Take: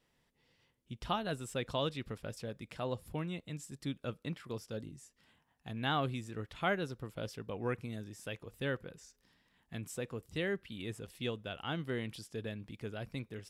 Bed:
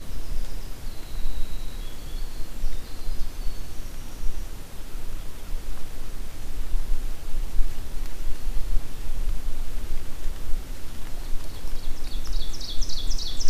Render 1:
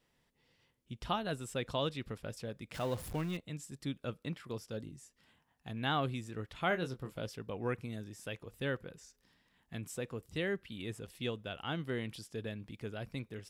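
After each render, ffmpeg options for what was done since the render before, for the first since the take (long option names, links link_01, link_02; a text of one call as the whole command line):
ffmpeg -i in.wav -filter_complex "[0:a]asettb=1/sr,asplit=3[link_01][link_02][link_03];[link_01]atrim=end=2.744[link_04];[link_02]atrim=start=2.74:end=3.37,asetpts=PTS-STARTPTS,afade=type=in:duration=0.004:curve=qsin,afade=type=out:start_time=0.626:duration=0.004:curve=qsin,aeval=exprs='val(0)+0.5*0.00794*sgn(val(0))':channel_layout=same[link_05];[link_03]atrim=start=3.366[link_06];[link_04][link_05]acrossfade=duration=0.004:curve1=hsin:curve2=qsin[link_07];[link_07][link_06]acrossfade=duration=0.004:curve1=qsin:curve2=hsin,asettb=1/sr,asplit=3[link_08][link_09][link_10];[link_08]atrim=end=6.684[link_11];[link_09]atrim=start=6.68:end=7.21,asetpts=PTS-STARTPTS,afade=type=in:duration=0.004:curve=qsin,afade=type=out:start_time=0.526:duration=0.004:curve=qsin,asplit=2[link_12][link_13];[link_13]adelay=23,volume=-8dB[link_14];[link_12][link_14]amix=inputs=2:normalize=0,atrim=end_sample=23373[link_15];[link_10]atrim=start=7.206[link_16];[link_11][link_15]acrossfade=duration=0.004:curve1=hsin:curve2=qsin[link_17];[link_17][link_16]acrossfade=duration=0.004:curve1=qsin:curve2=hsin" out.wav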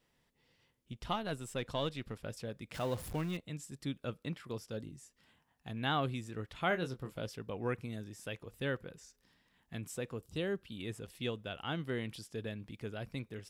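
ffmpeg -i in.wav -filter_complex "[0:a]asettb=1/sr,asplit=3[link_01][link_02][link_03];[link_01]atrim=end=0.924[link_04];[link_02]atrim=start=0.92:end=2.2,asetpts=PTS-STARTPTS,afade=type=in:duration=0.004:curve=qsin,afade=type=out:start_time=1.276:duration=0.004:curve=qsin,aeval=exprs='if(lt(val(0),0),0.708*val(0),val(0))':channel_layout=same[link_05];[link_03]atrim=start=2.196[link_06];[link_04][link_05]acrossfade=duration=0.004:curve1=hsin:curve2=qsin[link_07];[link_07][link_06]acrossfade=duration=0.004:curve1=qsin:curve2=hsin,asettb=1/sr,asplit=3[link_08][link_09][link_10];[link_08]atrim=end=10.184[link_11];[link_09]atrim=start=10.18:end=10.8,asetpts=PTS-STARTPTS,afade=type=in:duration=0.004:curve=qsin,afade=type=out:start_time=0.616:duration=0.004:curve=qsin,equalizer=frequency=2000:width_type=o:width=0.44:gain=-10[link_12];[link_10]atrim=start=10.796[link_13];[link_11][link_12]acrossfade=duration=0.004:curve1=hsin:curve2=qsin[link_14];[link_14][link_13]acrossfade=duration=0.004:curve1=qsin:curve2=hsin" out.wav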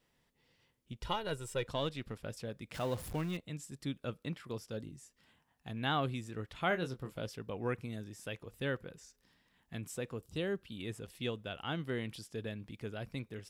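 ffmpeg -i in.wav -filter_complex "[0:a]asettb=1/sr,asplit=3[link_01][link_02][link_03];[link_01]atrim=end=1.014[link_04];[link_02]atrim=start=1.01:end=1.67,asetpts=PTS-STARTPTS,afade=type=in:duration=0.004:curve=qsin,afade=type=out:start_time=0.656:duration=0.004:curve=qsin,aecho=1:1:2.1:0.65,atrim=end_sample=29106[link_05];[link_03]atrim=start=1.666[link_06];[link_04][link_05]acrossfade=duration=0.004:curve1=hsin:curve2=qsin[link_07];[link_07][link_06]acrossfade=duration=0.004:curve1=qsin:curve2=hsin" out.wav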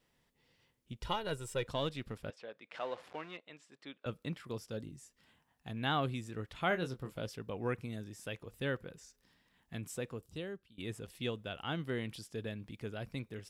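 ffmpeg -i in.wav -filter_complex "[0:a]asettb=1/sr,asplit=3[link_01][link_02][link_03];[link_01]atrim=end=2.304[link_04];[link_02]atrim=start=2.3:end=4.06,asetpts=PTS-STARTPTS,afade=type=in:duration=0.004:curve=qsin,afade=type=out:start_time=1.756:duration=0.004:curve=qsin,highpass=530,lowpass=3100[link_05];[link_03]atrim=start=4.056[link_06];[link_04][link_05]acrossfade=duration=0.004:curve1=hsin:curve2=qsin[link_07];[link_07][link_06]acrossfade=duration=0.004:curve1=qsin:curve2=hsin,asplit=2[link_08][link_09];[link_08]atrim=end=10.78,asetpts=PTS-STARTPTS,afade=type=out:start_time=10.02:duration=0.76:silence=0.0794328[link_10];[link_09]atrim=start=10.78,asetpts=PTS-STARTPTS,afade=type=in:duration=0.004:curve=hsin:silence=0.0794328[link_11];[link_10][link_11]concat=n=2:v=0:a=1" out.wav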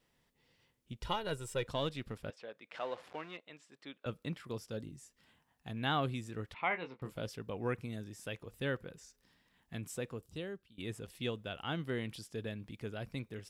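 ffmpeg -i in.wav -filter_complex "[0:a]asettb=1/sr,asplit=3[link_01][link_02][link_03];[link_01]atrim=end=6.544[link_04];[link_02]atrim=start=6.54:end=7.02,asetpts=PTS-STARTPTS,afade=type=in:duration=0.004:curve=qsin,afade=type=out:start_time=0.476:duration=0.004:curve=qsin,highpass=330,equalizer=frequency=370:width_type=q:width=4:gain=-7,equalizer=frequency=600:width_type=q:width=4:gain=-7,equalizer=frequency=940:width_type=q:width=4:gain=8,equalizer=frequency=1500:width_type=q:width=4:gain=-9,equalizer=frequency=2200:width_type=q:width=4:gain=10,equalizer=frequency=3300:width_type=q:width=4:gain=-8,lowpass=frequency=3500:width=0.5412,lowpass=frequency=3500:width=1.3066[link_05];[link_03]atrim=start=7.016[link_06];[link_04][link_05]acrossfade=duration=0.004:curve1=hsin:curve2=qsin[link_07];[link_07][link_06]acrossfade=duration=0.004:curve1=qsin:curve2=hsin" out.wav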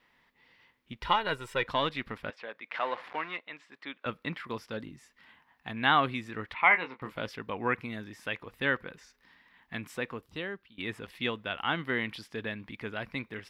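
ffmpeg -i in.wav -af "equalizer=frequency=125:width_type=o:width=1:gain=-3,equalizer=frequency=250:width_type=o:width=1:gain=5,equalizer=frequency=1000:width_type=o:width=1:gain=10,equalizer=frequency=2000:width_type=o:width=1:gain=12,equalizer=frequency=4000:width_type=o:width=1:gain=5,equalizer=frequency=8000:width_type=o:width=1:gain=-8" out.wav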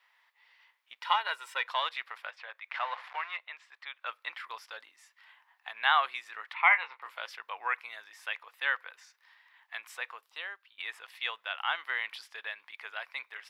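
ffmpeg -i in.wav -af "highpass=frequency=770:width=0.5412,highpass=frequency=770:width=1.3066" out.wav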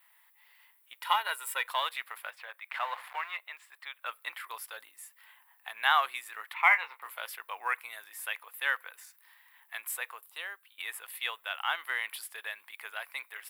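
ffmpeg -i in.wav -af "aexciter=amount=13.4:drive=2.6:freq=8200,acrusher=bits=9:mode=log:mix=0:aa=0.000001" out.wav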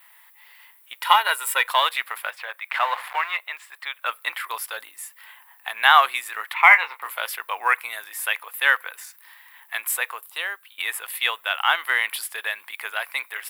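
ffmpeg -i in.wav -af "volume=11.5dB,alimiter=limit=-1dB:level=0:latency=1" out.wav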